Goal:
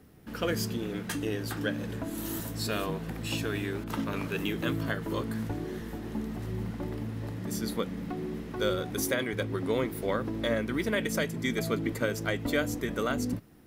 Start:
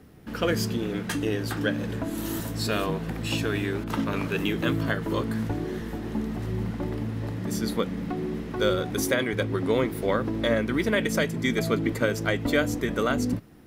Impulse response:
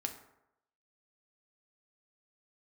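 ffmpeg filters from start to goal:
-af "highshelf=f=8.3k:g=6,volume=-5dB"

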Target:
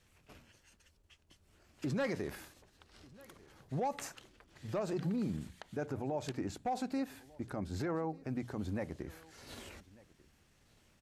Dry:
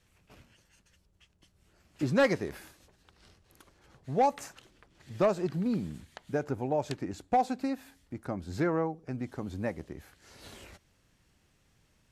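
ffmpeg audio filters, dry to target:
-filter_complex "[0:a]bandreject=f=60:t=h:w=6,bandreject=f=120:t=h:w=6,bandreject=f=180:t=h:w=6,atempo=1.1,alimiter=level_in=4.5dB:limit=-24dB:level=0:latency=1:release=37,volume=-4.5dB,asplit=2[a][b];[b]aecho=0:1:1194:0.0708[c];[a][c]amix=inputs=2:normalize=0"

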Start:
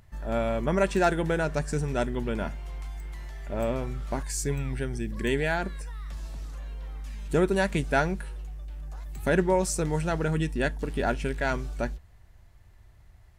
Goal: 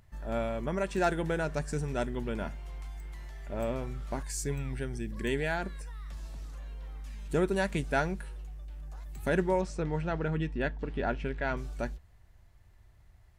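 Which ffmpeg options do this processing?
-filter_complex "[0:a]asettb=1/sr,asplit=3[a][b][c];[a]atrim=end=0.454[d];[b]atrim=start=0.45:end=0.98,asetpts=PTS-STARTPTS,afade=t=in:d=0.004:c=qsin,afade=t=out:st=0.526:d=0.004:c=qsin,acompressor=threshold=-28dB:ratio=1.5[e];[c]atrim=start=0.976[f];[d][e]acrossfade=d=0.004:c1=hsin:c2=qsin[g];[g][f]acrossfade=d=0.004:c1=qsin:c2=hsin,asettb=1/sr,asplit=3[h][i][j];[h]atrim=end=9.614[k];[i]atrim=start=9.61:end=11.57,asetpts=PTS-STARTPTS,afade=t=in:d=0.004:c=qsin,afade=t=out:st=1.956:d=0.004:c=qsin,lowpass=3.3k[l];[j]atrim=start=11.566[m];[k][l]acrossfade=d=0.004:c1=hsin:c2=qsin[n];[n][m]acrossfade=d=0.004:c1=qsin:c2=hsin,volume=-4.5dB"

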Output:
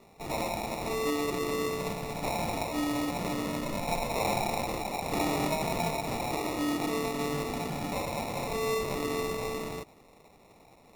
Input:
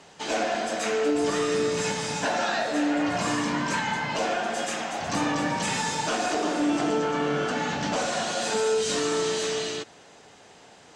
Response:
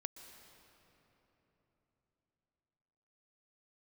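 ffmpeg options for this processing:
-filter_complex "[0:a]asettb=1/sr,asplit=3[a][b][c];[a]atrim=end=3.884[d];[b]atrim=start=3.88:end=5.99,asetpts=PTS-STARTPTS,afade=t=in:d=0.004:c=qsin,afade=t=out:st=2.106:d=0.004:c=qsin,equalizer=f=940:t=o:w=2.3:g=5[e];[c]atrim=start=5.986[f];[d][e]acrossfade=d=0.004:c1=hsin:c2=qsin[g];[g][f]acrossfade=d=0.004:c1=qsin:c2=hsin,acrusher=samples=28:mix=1:aa=0.000001,volume=-5.5dB" -ar 44100 -c:a libmp3lame -b:a 96k

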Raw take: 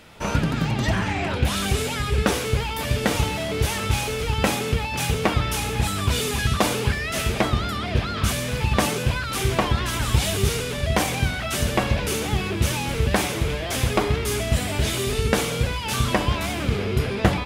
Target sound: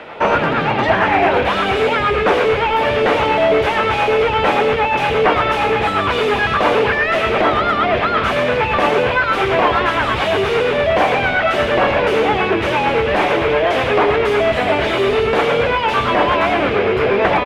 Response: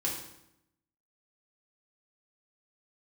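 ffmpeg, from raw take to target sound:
-filter_complex "[0:a]asplit=2[a][b];[b]highpass=f=720:p=1,volume=27dB,asoftclip=type=tanh:threshold=-2dB[c];[a][c]amix=inputs=2:normalize=0,lowpass=f=1.1k:p=1,volume=-6dB,lowshelf=f=250:g=11,acrossover=split=850|2100[d][e][f];[d]alimiter=limit=-6dB:level=0:latency=1[g];[e]tremolo=f=8.7:d=0.82[h];[g][h][f]amix=inputs=3:normalize=0,acrossover=split=380 3200:gain=0.158 1 0.112[i][j][k];[i][j][k]amix=inputs=3:normalize=0,asplit=2[l][m];[m]adelay=110,highpass=300,lowpass=3.4k,asoftclip=type=hard:threshold=-12.5dB,volume=-9dB[n];[l][n]amix=inputs=2:normalize=0,volume=3dB"

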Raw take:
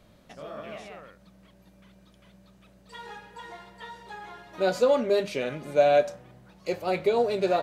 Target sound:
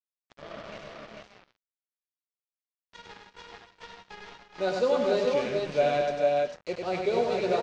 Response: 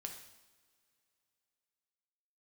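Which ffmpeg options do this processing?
-af "acrusher=bits=5:mix=0:aa=0.5,lowpass=f=6k:w=0.5412,lowpass=f=6k:w=1.3066,aecho=1:1:98|176|284|419|447:0.631|0.119|0.282|0.335|0.668,volume=-4dB"

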